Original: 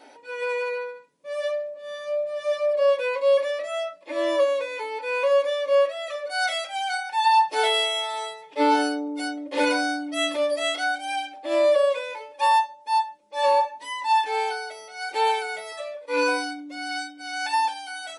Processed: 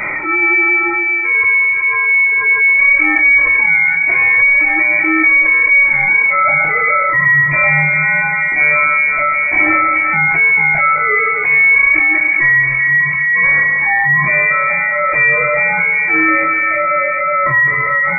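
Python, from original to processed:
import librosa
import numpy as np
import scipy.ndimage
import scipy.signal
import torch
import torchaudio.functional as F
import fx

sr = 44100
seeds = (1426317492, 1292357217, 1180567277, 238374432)

p1 = fx.dynamic_eq(x, sr, hz=530.0, q=3.0, threshold_db=-36.0, ratio=4.0, max_db=4)
p2 = np.clip(p1, -10.0 ** (-19.0 / 20.0), 10.0 ** (-19.0 / 20.0))
p3 = p1 + (p2 * 10.0 ** (-11.0 / 20.0))
p4 = fx.quant_float(p3, sr, bits=2)
p5 = fx.brickwall_highpass(p4, sr, low_hz=330.0)
p6 = fx.doubler(p5, sr, ms=29.0, db=-4.0)
p7 = fx.echo_split(p6, sr, split_hz=1400.0, low_ms=384, high_ms=134, feedback_pct=52, wet_db=-10.0)
p8 = fx.freq_invert(p7, sr, carrier_hz=2800)
y = fx.env_flatten(p8, sr, amount_pct=70)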